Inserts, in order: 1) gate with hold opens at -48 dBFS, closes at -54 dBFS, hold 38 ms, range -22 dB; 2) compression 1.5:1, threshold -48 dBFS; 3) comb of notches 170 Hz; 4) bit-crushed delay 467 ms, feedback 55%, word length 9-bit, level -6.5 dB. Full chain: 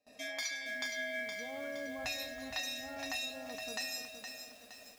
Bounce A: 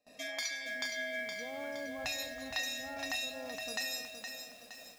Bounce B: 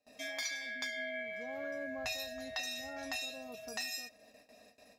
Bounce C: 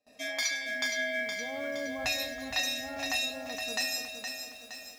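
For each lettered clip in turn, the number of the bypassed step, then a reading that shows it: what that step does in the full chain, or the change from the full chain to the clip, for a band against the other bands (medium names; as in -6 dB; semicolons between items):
3, loudness change +1.0 LU; 4, 500 Hz band +1.5 dB; 2, mean gain reduction 5.0 dB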